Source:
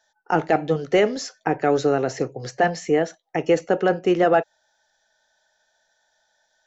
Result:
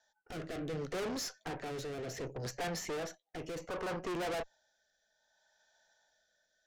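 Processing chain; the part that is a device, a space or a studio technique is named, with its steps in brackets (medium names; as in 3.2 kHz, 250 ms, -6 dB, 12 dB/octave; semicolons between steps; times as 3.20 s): overdriven rotary cabinet (valve stage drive 35 dB, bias 0.7; rotary cabinet horn 0.65 Hz); 3.60–4.13 s: peaking EQ 1.1 kHz +13.5 dB -> +2 dB 0.67 oct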